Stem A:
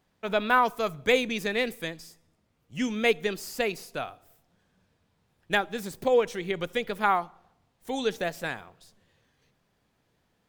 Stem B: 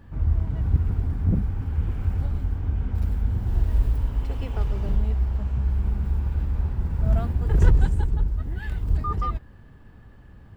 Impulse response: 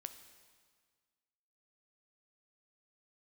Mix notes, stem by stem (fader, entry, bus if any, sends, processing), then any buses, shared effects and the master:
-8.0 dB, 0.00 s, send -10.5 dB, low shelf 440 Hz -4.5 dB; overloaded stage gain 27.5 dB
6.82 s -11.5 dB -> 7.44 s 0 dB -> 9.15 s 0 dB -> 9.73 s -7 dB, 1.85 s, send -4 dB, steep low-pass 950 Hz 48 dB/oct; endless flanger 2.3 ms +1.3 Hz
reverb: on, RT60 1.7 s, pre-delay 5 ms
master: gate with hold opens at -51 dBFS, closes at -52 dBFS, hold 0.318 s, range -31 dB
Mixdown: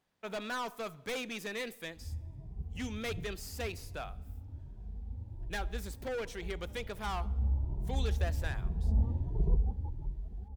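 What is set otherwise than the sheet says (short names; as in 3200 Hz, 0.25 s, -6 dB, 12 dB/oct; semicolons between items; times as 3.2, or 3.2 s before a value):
stem B -11.5 dB -> -19.5 dB; master: missing gate with hold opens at -51 dBFS, closes at -52 dBFS, hold 0.318 s, range -31 dB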